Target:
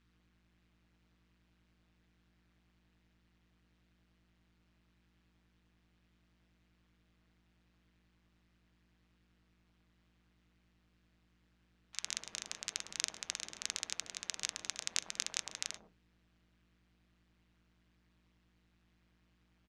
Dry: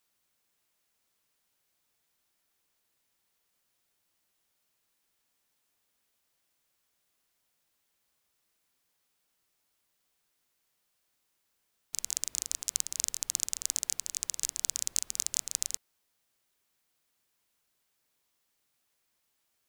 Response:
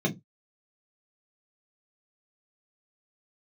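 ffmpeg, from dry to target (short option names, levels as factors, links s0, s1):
-filter_complex "[0:a]highpass=140,lowpass=2600,lowshelf=f=270:g=-11,acrossover=split=900[s0][s1];[s0]adelay=100[s2];[s2][s1]amix=inputs=2:normalize=0,aeval=exprs='val(0)+0.0001*(sin(2*PI*60*n/s)+sin(2*PI*2*60*n/s)/2+sin(2*PI*3*60*n/s)/3+sin(2*PI*4*60*n/s)/4+sin(2*PI*5*60*n/s)/5)':c=same,asplit=2[s3][s4];[1:a]atrim=start_sample=2205[s5];[s4][s5]afir=irnorm=-1:irlink=0,volume=0.0841[s6];[s3][s6]amix=inputs=2:normalize=0,tremolo=f=170:d=0.788,volume=3.76"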